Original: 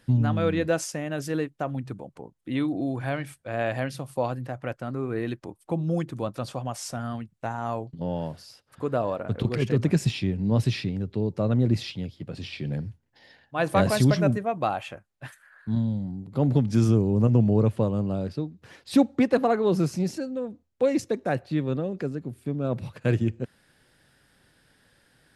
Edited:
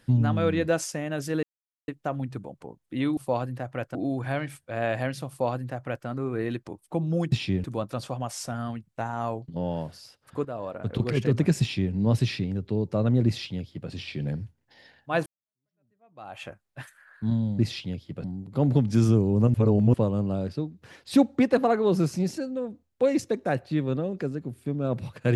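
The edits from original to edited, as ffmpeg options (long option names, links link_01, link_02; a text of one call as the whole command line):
ffmpeg -i in.wav -filter_complex "[0:a]asplit=12[link_01][link_02][link_03][link_04][link_05][link_06][link_07][link_08][link_09][link_10][link_11][link_12];[link_01]atrim=end=1.43,asetpts=PTS-STARTPTS,afade=type=out:start_time=1.426:duration=0.004:curve=hsin,apad=pad_dur=0.45[link_13];[link_02]atrim=start=1.43:end=2.722,asetpts=PTS-STARTPTS,afade=type=in:duration=0.004:curve=hsin[link_14];[link_03]atrim=start=4.058:end=4.842[link_15];[link_04]atrim=start=2.718:end=6.092[link_16];[link_05]atrim=start=10.058:end=10.382[link_17];[link_06]atrim=start=6.088:end=8.9,asetpts=PTS-STARTPTS,afade=type=out:start_time=2.808:duration=0.004:curve=hsin:silence=0.237137[link_18];[link_07]atrim=start=8.9:end=13.71,asetpts=PTS-STARTPTS,afade=type=in:duration=0.6:silence=0.237137,afade=type=out:start_time=4.806:duration=0.004:curve=hsin[link_19];[link_08]atrim=start=13.71:end=16.042,asetpts=PTS-STARTPTS,afade=type=in:duration=1.17:curve=exp[link_20];[link_09]atrim=start=11.698:end=12.352[link_21];[link_10]atrim=start=16.038:end=17.342[link_22];[link_11]atrim=start=17.338:end=17.742,asetpts=PTS-STARTPTS,areverse[link_23];[link_12]atrim=start=17.738[link_24];[link_13][link_14]concat=n=2:v=0:a=1[link_25];[link_25][link_15]acrossfade=duration=0.004:curve1=hsin:curve2=hsin[link_26];[link_26][link_16]acrossfade=duration=0.004:curve1=hsin:curve2=hsin[link_27];[link_27][link_17]acrossfade=duration=0.004:curve1=hsin:curve2=hsin[link_28];[link_18][link_19][link_20]concat=n=3:v=0:a=1[link_29];[link_28][link_29]acrossfade=duration=0.004:curve1=hsin:curve2=hsin[link_30];[link_30][link_21]acrossfade=duration=0.004:curve1=hsin:curve2=hsin[link_31];[link_31][link_22]acrossfade=duration=0.004:curve1=hsin:curve2=hsin[link_32];[link_32][link_23]acrossfade=duration=0.004:curve1=hsin:curve2=hsin[link_33];[link_33][link_24]acrossfade=duration=0.004:curve1=hsin:curve2=hsin" out.wav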